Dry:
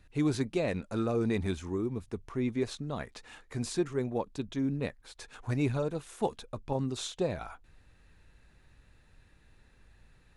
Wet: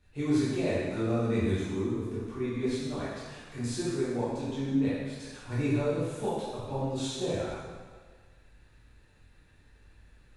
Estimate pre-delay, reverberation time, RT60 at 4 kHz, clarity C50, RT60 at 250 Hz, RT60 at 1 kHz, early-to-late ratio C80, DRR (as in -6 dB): 5 ms, 1.6 s, 1.4 s, -2.5 dB, 1.5 s, 1.6 s, 0.5 dB, -10.0 dB